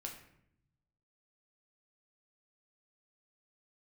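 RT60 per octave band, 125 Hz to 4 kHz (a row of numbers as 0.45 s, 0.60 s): 1.5 s, 1.2 s, 0.75 s, 0.65 s, 0.65 s, 0.50 s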